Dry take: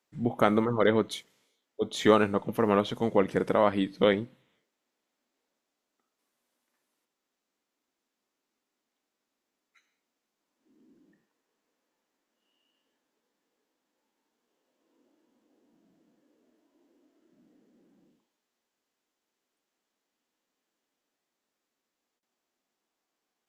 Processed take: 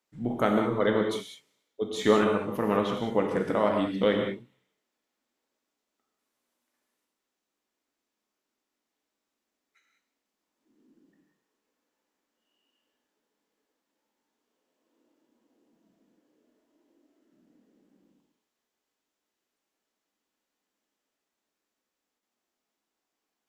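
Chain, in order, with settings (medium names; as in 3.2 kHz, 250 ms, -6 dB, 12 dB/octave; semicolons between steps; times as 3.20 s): gated-style reverb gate 220 ms flat, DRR 1.5 dB; trim -3 dB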